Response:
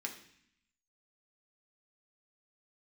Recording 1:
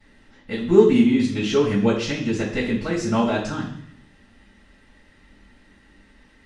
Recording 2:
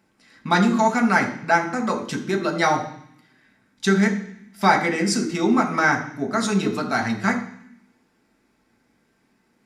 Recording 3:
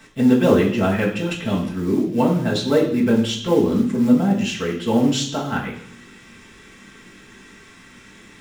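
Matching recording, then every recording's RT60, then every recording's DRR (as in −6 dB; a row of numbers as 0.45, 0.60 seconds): 2; 0.60, 0.60, 0.60 seconds; −14.0, 0.5, −5.5 decibels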